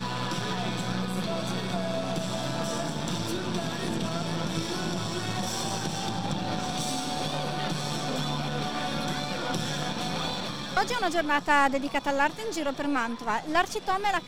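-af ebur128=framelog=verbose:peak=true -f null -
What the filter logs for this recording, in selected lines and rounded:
Integrated loudness:
  I:         -29.2 LUFS
  Threshold: -39.2 LUFS
Loudness range:
  LRA:         3.9 LU
  Threshold: -49.3 LUFS
  LRA low:   -30.6 LUFS
  LRA high:  -26.7 LUFS
True peak:
  Peak:       -9.1 dBFS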